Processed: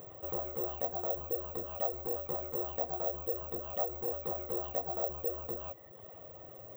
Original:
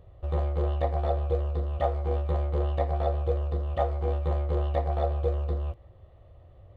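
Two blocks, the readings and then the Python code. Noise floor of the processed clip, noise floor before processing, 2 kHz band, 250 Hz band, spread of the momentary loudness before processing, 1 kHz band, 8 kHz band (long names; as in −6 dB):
−52 dBFS, −53 dBFS, −9.5 dB, −7.5 dB, 3 LU, −8.0 dB, can't be measured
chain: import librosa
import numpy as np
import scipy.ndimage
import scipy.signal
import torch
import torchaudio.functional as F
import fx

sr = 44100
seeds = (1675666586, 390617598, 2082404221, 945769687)

y = fx.lowpass(x, sr, hz=3200.0, slope=6)
y = fx.dereverb_blind(y, sr, rt60_s=0.73)
y = scipy.signal.sosfilt(scipy.signal.butter(2, 240.0, 'highpass', fs=sr, output='sos'), y)
y = fx.dynamic_eq(y, sr, hz=2500.0, q=0.82, threshold_db=-49.0, ratio=4.0, max_db=-6)
y = (np.kron(y[::2], np.eye(2)[0]) * 2)[:len(y)]
y = fx.env_flatten(y, sr, amount_pct=50)
y = y * librosa.db_to_amplitude(-9.0)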